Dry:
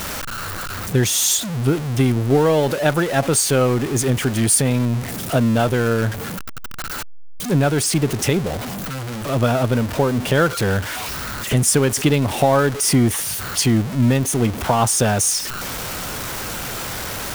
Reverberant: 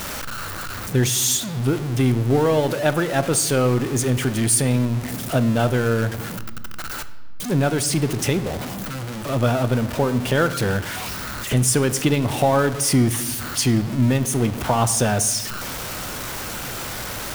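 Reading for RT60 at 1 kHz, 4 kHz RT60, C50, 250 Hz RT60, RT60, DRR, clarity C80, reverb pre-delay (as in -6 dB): 1.1 s, 0.95 s, 14.0 dB, 2.2 s, 1.3 s, 11.5 dB, 15.5 dB, 3 ms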